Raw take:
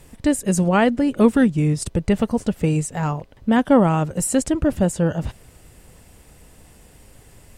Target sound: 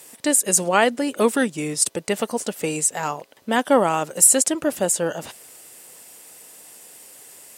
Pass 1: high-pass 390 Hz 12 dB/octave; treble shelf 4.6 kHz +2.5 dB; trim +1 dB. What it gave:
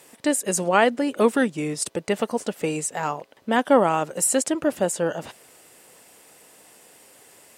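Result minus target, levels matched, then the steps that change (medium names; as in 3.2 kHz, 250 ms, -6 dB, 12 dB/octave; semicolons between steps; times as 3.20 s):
8 kHz band -5.0 dB
change: treble shelf 4.6 kHz +13 dB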